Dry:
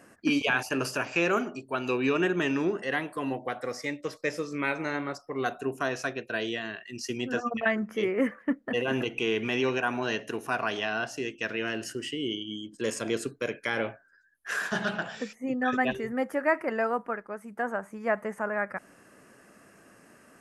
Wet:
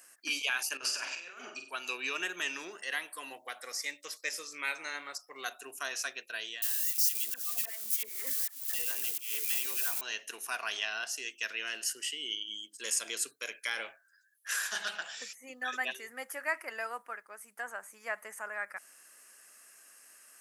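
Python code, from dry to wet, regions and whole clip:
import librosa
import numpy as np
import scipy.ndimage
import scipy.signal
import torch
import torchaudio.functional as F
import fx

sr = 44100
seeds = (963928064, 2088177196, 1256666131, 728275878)

y = fx.chain(x, sr, fx.over_compress(threshold_db=-32.0, ratio=-0.5),
    fx.air_absorb(metres=96.0),
    fx.room_flutter(wall_m=8.2, rt60_s=0.41), at=(0.77, 1.71))
y = fx.chain(y, sr, fx.crossing_spikes(level_db=-23.0),
    fx.auto_swell(attack_ms=163.0),
    fx.dispersion(late='lows', ms=68.0, hz=950.0), at=(6.62, 10.01))
y = fx.highpass(y, sr, hz=290.0, slope=6)
y = np.diff(y, prepend=0.0)
y = fx.rider(y, sr, range_db=4, speed_s=0.5)
y = F.gain(torch.from_numpy(y), 4.0).numpy()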